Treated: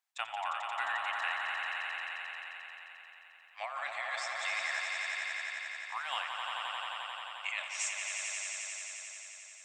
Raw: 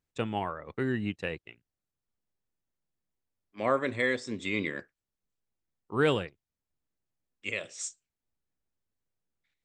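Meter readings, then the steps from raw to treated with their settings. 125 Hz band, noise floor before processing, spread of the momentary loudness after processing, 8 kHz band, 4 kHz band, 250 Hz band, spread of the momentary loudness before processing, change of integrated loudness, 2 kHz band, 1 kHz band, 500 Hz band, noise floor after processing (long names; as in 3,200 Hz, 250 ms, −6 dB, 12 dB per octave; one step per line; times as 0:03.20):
below −35 dB, below −85 dBFS, 12 LU, +6.0 dB, +4.0 dB, below −35 dB, 11 LU, −4.5 dB, +2.0 dB, +1.5 dB, −16.5 dB, −56 dBFS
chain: elliptic high-pass filter 720 Hz, stop band 40 dB
compressor whose output falls as the input rises −37 dBFS, ratio −1
echo that builds up and dies away 88 ms, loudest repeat 5, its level −6 dB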